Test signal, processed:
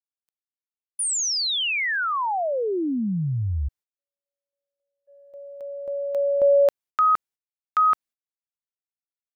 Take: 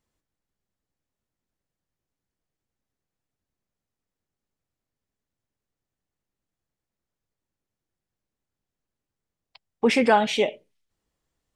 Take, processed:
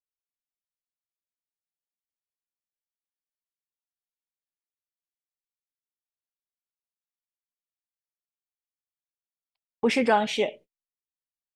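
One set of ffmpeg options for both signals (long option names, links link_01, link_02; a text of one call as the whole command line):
ffmpeg -i in.wav -af "agate=range=-31dB:threshold=-43dB:ratio=16:detection=peak,volume=-3dB" out.wav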